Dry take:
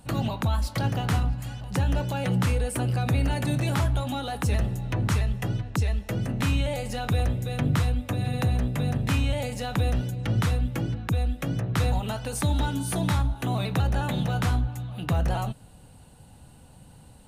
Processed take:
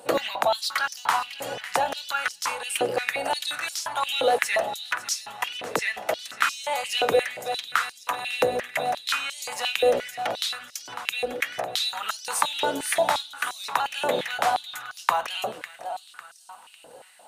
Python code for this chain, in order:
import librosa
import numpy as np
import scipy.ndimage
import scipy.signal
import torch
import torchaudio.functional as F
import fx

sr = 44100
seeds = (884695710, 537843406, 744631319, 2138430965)

y = fx.rider(x, sr, range_db=10, speed_s=0.5)
y = fx.echo_feedback(y, sr, ms=551, feedback_pct=45, wet_db=-13.5)
y = fx.filter_held_highpass(y, sr, hz=5.7, low_hz=490.0, high_hz=5400.0)
y = F.gain(torch.from_numpy(y), 4.5).numpy()